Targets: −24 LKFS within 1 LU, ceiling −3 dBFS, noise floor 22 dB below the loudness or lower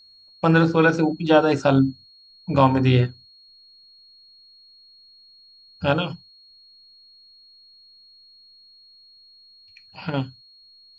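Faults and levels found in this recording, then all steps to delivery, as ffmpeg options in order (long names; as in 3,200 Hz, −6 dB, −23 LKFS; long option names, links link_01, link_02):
interfering tone 4,300 Hz; level of the tone −49 dBFS; integrated loudness −20.0 LKFS; sample peak −2.0 dBFS; target loudness −24.0 LKFS
→ -af "bandreject=frequency=4300:width=30"
-af "volume=-4dB"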